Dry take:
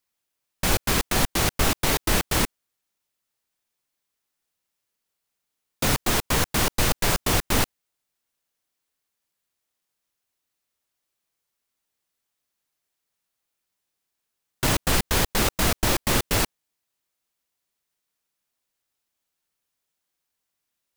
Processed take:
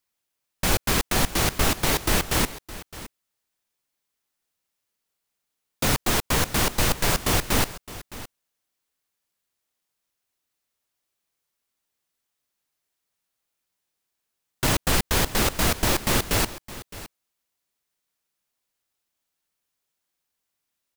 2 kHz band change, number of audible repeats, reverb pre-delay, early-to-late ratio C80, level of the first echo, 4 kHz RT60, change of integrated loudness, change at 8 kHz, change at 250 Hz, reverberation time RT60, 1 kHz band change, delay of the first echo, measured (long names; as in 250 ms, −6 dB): 0.0 dB, 1, no reverb audible, no reverb audible, −16.5 dB, no reverb audible, 0.0 dB, 0.0 dB, 0.0 dB, no reverb audible, 0.0 dB, 614 ms